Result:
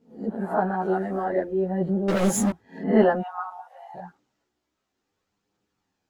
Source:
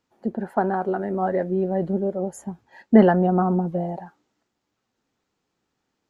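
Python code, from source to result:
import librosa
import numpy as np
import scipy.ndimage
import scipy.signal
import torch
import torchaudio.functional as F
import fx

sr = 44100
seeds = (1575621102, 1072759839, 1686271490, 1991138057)

y = fx.spec_swells(x, sr, rise_s=0.38)
y = fx.high_shelf(y, sr, hz=2600.0, db=9.0, at=(0.8, 1.22), fade=0.02)
y = fx.leveller(y, sr, passes=5, at=(2.08, 2.51))
y = fx.ellip_highpass(y, sr, hz=820.0, order=4, stop_db=60, at=(3.2, 3.94), fade=0.02)
y = fx.chorus_voices(y, sr, voices=2, hz=0.36, base_ms=13, depth_ms=3.4, mix_pct=55)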